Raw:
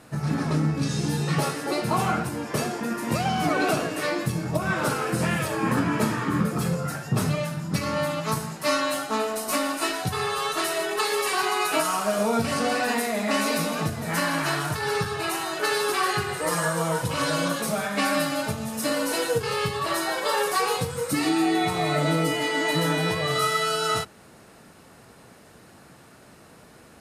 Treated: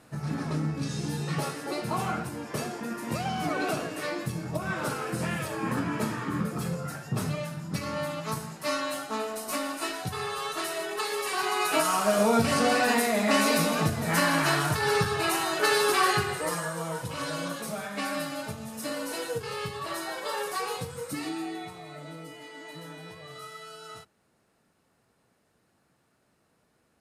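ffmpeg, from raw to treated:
ffmpeg -i in.wav -af "volume=1dB,afade=type=in:start_time=11.25:duration=0.9:silence=0.446684,afade=type=out:start_time=16.09:duration=0.55:silence=0.354813,afade=type=out:start_time=20.99:duration=0.83:silence=0.266073" out.wav

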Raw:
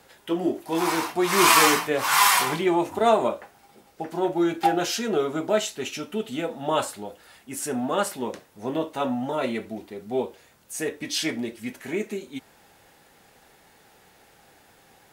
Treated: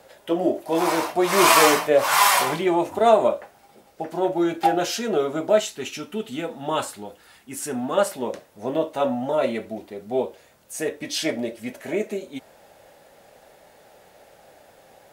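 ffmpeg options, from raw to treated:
ffmpeg -i in.wav -af "asetnsamples=nb_out_samples=441:pad=0,asendcmd='2.51 equalizer g 6.5;5.6 equalizer g -2;7.97 equalizer g 8;11.25 equalizer g 14.5',equalizer=frequency=590:width_type=o:width=0.53:gain=13.5" out.wav

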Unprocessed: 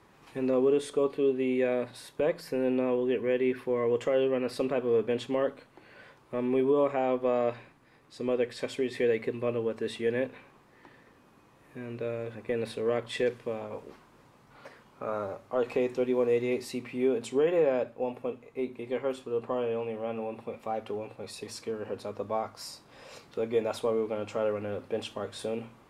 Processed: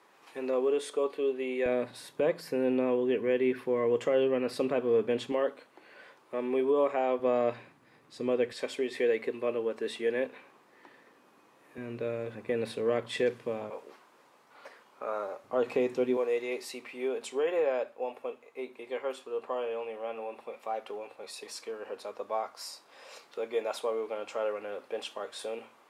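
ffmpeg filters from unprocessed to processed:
ffmpeg -i in.wav -af "asetnsamples=nb_out_samples=441:pad=0,asendcmd='1.66 highpass f 130;5.32 highpass f 320;7.19 highpass f 120;8.52 highpass f 290;11.78 highpass f 110;13.7 highpass f 420;15.44 highpass f 140;16.17 highpass f 500',highpass=420" out.wav

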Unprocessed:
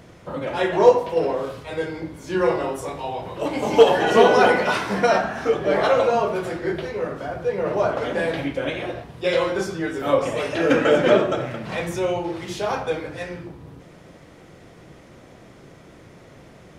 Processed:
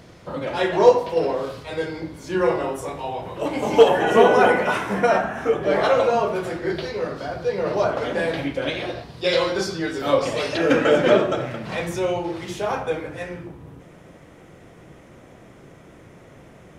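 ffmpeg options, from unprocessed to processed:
ffmpeg -i in.wav -af "asetnsamples=nb_out_samples=441:pad=0,asendcmd='2.28 equalizer g -2.5;3.88 equalizer g -11;5.63 equalizer g 0.5;6.7 equalizer g 11.5;7.84 equalizer g 3;8.62 equalizer g 12;10.57 equalizer g 1.5;12.51 equalizer g -7',equalizer=frequency=4500:width_type=o:width=0.63:gain=5" out.wav

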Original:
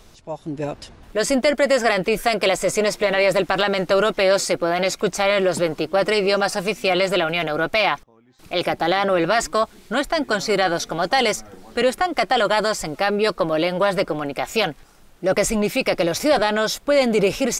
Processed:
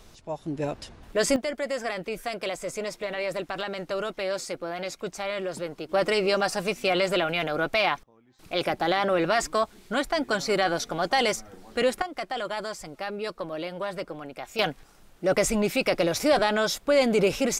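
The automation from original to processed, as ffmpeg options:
ffmpeg -i in.wav -af "asetnsamples=nb_out_samples=441:pad=0,asendcmd='1.36 volume volume -12.5dB;5.89 volume volume -5dB;12.02 volume volume -13dB;14.59 volume volume -4dB',volume=-3dB" out.wav

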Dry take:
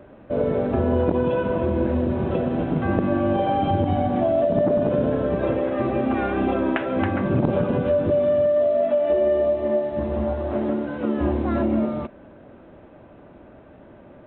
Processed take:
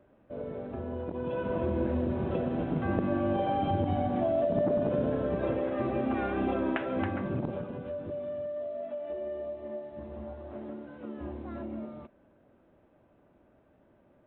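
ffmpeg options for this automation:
ffmpeg -i in.wav -af "volume=-7.5dB,afade=type=in:start_time=1.12:duration=0.45:silence=0.375837,afade=type=out:start_time=6.91:duration=0.79:silence=0.334965" out.wav

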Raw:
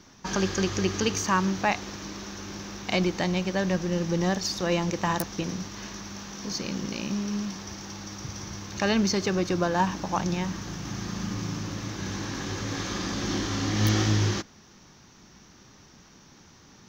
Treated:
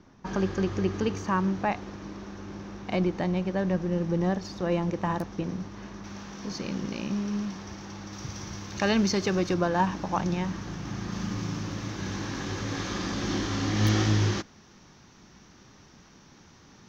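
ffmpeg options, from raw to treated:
ffmpeg -i in.wav -af "asetnsamples=nb_out_samples=441:pad=0,asendcmd='6.04 lowpass f 2400;8.13 lowpass f 6000;9.54 lowpass f 2700;11.12 lowpass f 4900',lowpass=frequency=1000:poles=1" out.wav

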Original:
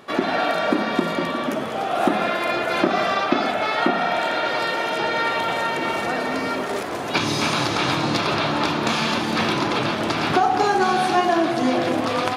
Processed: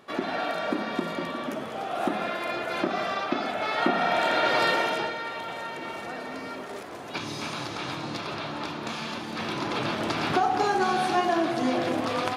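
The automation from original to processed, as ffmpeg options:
ffmpeg -i in.wav -af "volume=7dB,afade=type=in:start_time=3.48:duration=1.21:silence=0.375837,afade=type=out:start_time=4.69:duration=0.48:silence=0.237137,afade=type=in:start_time=9.35:duration=0.59:silence=0.473151" out.wav

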